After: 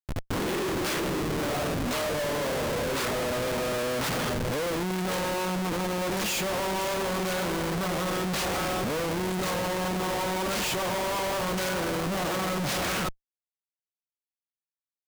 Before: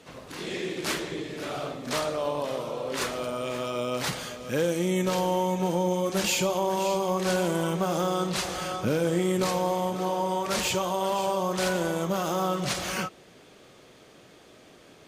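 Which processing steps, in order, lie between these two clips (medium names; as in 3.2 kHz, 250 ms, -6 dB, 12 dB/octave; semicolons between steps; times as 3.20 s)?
Schmitt trigger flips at -36 dBFS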